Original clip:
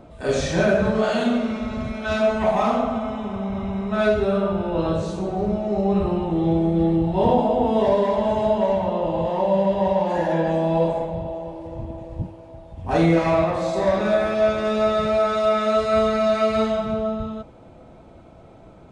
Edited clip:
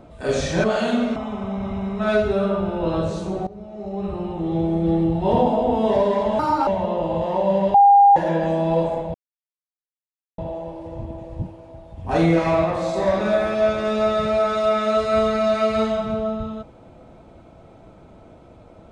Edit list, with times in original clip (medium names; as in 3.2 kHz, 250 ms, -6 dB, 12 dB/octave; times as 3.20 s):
0.64–0.97 s: delete
1.49–3.08 s: delete
5.39–6.88 s: fade in, from -19 dB
8.31–8.71 s: speed 142%
9.78–10.20 s: bleep 805 Hz -8 dBFS
11.18 s: insert silence 1.24 s